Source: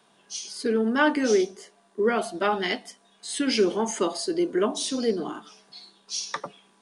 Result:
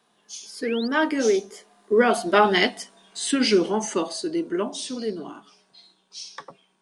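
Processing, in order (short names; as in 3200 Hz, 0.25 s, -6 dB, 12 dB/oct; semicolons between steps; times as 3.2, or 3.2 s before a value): Doppler pass-by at 2.57, 14 m/s, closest 9.5 m; painted sound rise, 0.62–0.88, 1700–5000 Hz -44 dBFS; gain +7.5 dB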